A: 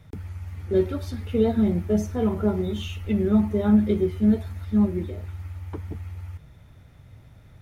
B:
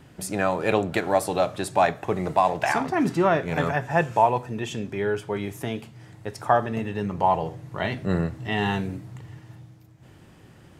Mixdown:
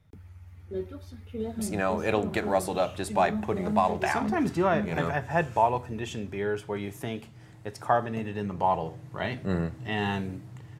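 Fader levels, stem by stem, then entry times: −12.5, −4.0 decibels; 0.00, 1.40 seconds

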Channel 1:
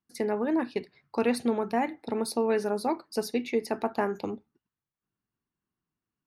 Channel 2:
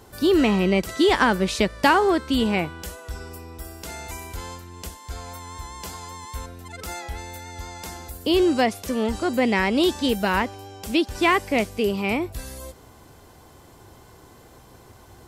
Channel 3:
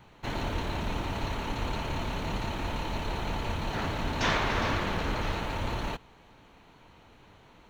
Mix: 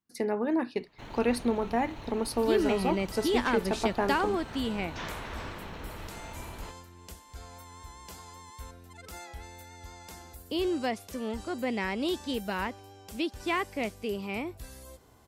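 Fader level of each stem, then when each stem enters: −1.0, −10.5, −11.5 decibels; 0.00, 2.25, 0.75 seconds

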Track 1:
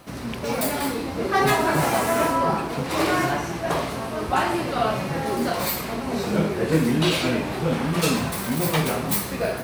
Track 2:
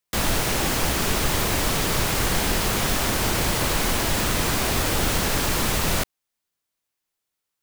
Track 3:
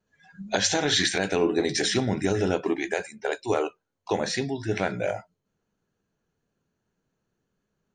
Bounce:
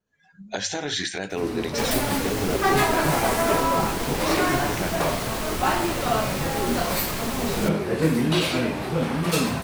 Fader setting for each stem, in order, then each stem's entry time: −1.0, −8.0, −4.5 decibels; 1.30, 1.65, 0.00 seconds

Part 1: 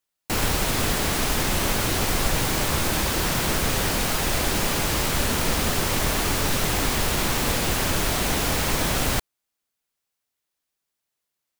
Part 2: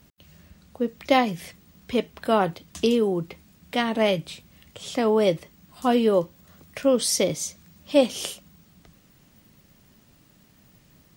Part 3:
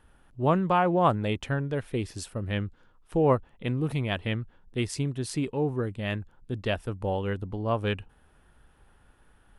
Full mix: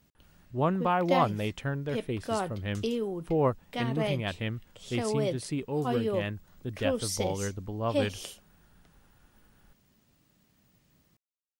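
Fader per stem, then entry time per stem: muted, −10.0 dB, −3.5 dB; muted, 0.00 s, 0.15 s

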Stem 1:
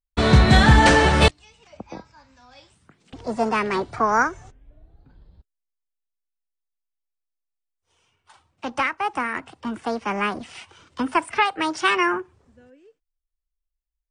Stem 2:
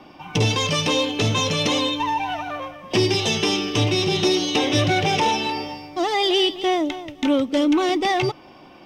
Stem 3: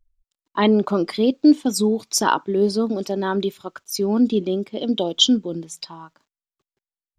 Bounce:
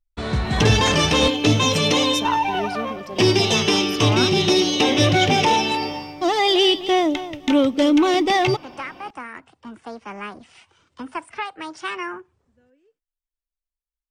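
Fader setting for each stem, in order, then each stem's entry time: −9.0, +2.5, −10.0 decibels; 0.00, 0.25, 0.00 seconds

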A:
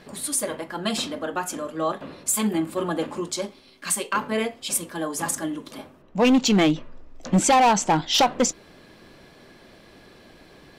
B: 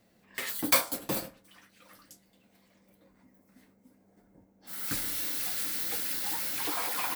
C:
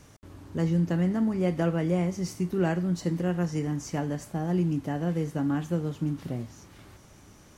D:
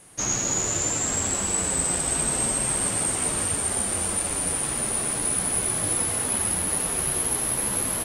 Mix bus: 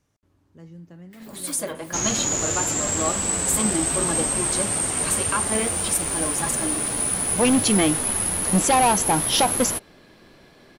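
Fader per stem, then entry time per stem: −1.5, −18.0, −18.0, +1.0 decibels; 1.20, 0.75, 0.00, 1.75 seconds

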